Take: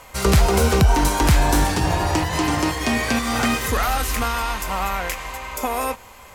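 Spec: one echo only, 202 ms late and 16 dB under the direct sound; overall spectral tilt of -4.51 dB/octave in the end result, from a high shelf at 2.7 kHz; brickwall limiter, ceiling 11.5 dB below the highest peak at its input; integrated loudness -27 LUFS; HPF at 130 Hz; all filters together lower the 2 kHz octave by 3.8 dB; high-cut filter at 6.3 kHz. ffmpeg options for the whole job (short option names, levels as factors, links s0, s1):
-af "highpass=130,lowpass=6300,equalizer=f=2000:t=o:g=-3.5,highshelf=f=2700:g=-3,alimiter=limit=0.112:level=0:latency=1,aecho=1:1:202:0.158,volume=1.12"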